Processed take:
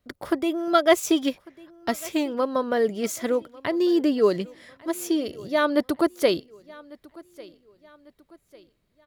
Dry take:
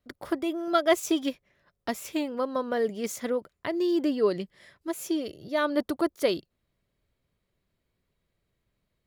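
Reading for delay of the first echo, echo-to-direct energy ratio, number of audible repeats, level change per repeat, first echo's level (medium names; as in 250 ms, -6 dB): 1148 ms, -21.5 dB, 2, -8.0 dB, -22.5 dB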